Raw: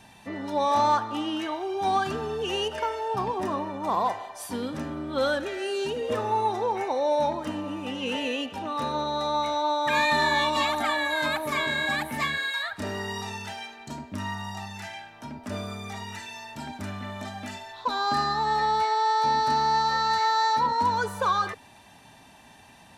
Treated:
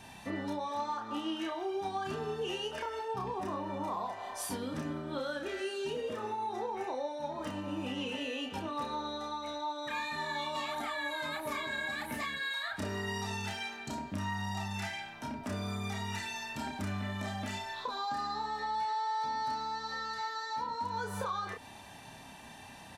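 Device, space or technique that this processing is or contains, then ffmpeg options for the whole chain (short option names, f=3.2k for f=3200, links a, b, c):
serial compression, peaks first: -filter_complex "[0:a]acompressor=threshold=-32dB:ratio=6,acompressor=threshold=-36dB:ratio=2.5,asplit=2[a][b];[b]adelay=31,volume=-3.5dB[c];[a][c]amix=inputs=2:normalize=0"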